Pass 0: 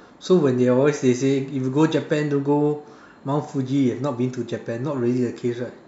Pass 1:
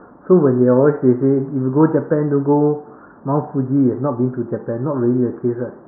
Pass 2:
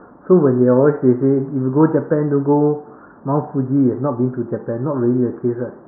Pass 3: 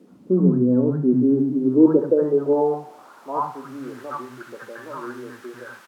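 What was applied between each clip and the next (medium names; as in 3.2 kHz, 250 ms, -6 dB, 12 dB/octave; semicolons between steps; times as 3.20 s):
steep low-pass 1.5 kHz 48 dB/octave; trim +5 dB
no audible change
three bands offset in time mids, highs, lows 70/100 ms, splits 220/710 Hz; added noise blue -35 dBFS; band-pass sweep 200 Hz -> 1.5 kHz, 1.04–3.94 s; trim +4 dB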